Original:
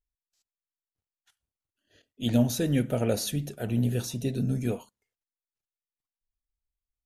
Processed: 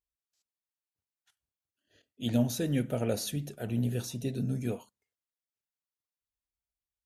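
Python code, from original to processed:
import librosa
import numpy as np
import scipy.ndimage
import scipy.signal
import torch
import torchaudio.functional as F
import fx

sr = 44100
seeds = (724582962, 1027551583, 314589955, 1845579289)

y = scipy.signal.sosfilt(scipy.signal.butter(2, 52.0, 'highpass', fs=sr, output='sos'), x)
y = F.gain(torch.from_numpy(y), -4.0).numpy()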